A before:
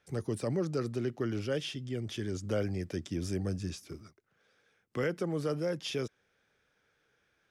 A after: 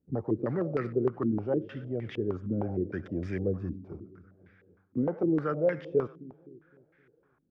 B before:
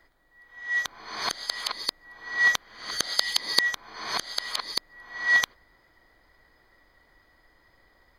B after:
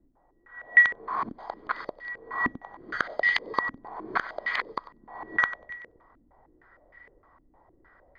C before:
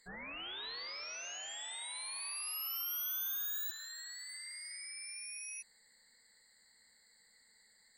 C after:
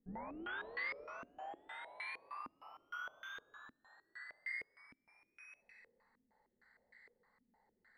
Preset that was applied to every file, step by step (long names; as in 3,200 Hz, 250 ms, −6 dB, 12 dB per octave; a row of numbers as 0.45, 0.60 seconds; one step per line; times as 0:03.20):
floating-point word with a short mantissa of 4 bits
echo with a time of its own for lows and highs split 420 Hz, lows 259 ms, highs 95 ms, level −16 dB
low-pass on a step sequencer 6.5 Hz 260–2,000 Hz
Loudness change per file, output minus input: +4.0, −0.5, −7.0 LU